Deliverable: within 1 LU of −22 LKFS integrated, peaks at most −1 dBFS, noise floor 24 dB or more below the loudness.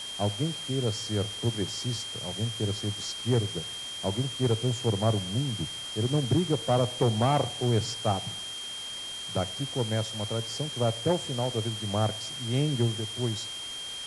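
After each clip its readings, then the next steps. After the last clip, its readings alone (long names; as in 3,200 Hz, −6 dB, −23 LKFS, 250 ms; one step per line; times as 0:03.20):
interfering tone 3,200 Hz; level of the tone −36 dBFS; background noise floor −38 dBFS; target noise floor −53 dBFS; integrated loudness −29.0 LKFS; sample peak −13.5 dBFS; target loudness −22.0 LKFS
→ notch filter 3,200 Hz, Q 30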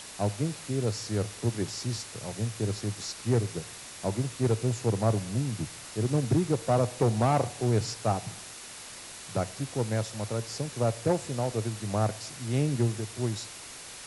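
interfering tone none found; background noise floor −44 dBFS; target noise floor −54 dBFS
→ noise reduction from a noise print 10 dB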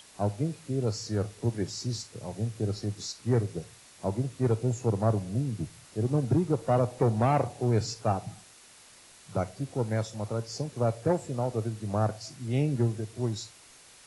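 background noise floor −54 dBFS; integrated loudness −30.0 LKFS; sample peak −14.0 dBFS; target loudness −22.0 LKFS
→ level +8 dB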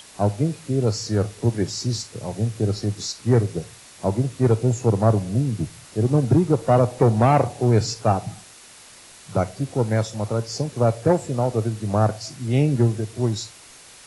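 integrated loudness −22.0 LKFS; sample peak −6.0 dBFS; background noise floor −46 dBFS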